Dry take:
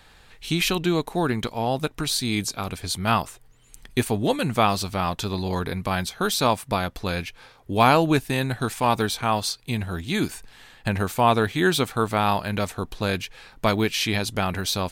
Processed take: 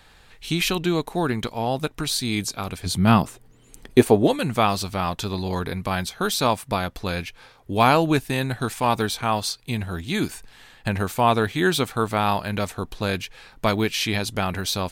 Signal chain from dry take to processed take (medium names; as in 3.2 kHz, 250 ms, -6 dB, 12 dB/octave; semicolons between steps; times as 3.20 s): 2.85–4.26 s: peaking EQ 140 Hz -> 540 Hz +11.5 dB 2.2 oct